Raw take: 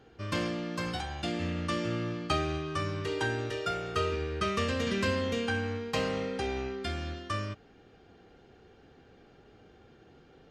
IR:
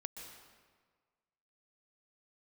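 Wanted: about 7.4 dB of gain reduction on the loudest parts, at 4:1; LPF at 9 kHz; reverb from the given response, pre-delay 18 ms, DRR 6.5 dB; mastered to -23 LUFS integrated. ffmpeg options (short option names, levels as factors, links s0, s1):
-filter_complex "[0:a]lowpass=9000,acompressor=threshold=0.02:ratio=4,asplit=2[s0][s1];[1:a]atrim=start_sample=2205,adelay=18[s2];[s1][s2]afir=irnorm=-1:irlink=0,volume=0.631[s3];[s0][s3]amix=inputs=2:normalize=0,volume=5.01"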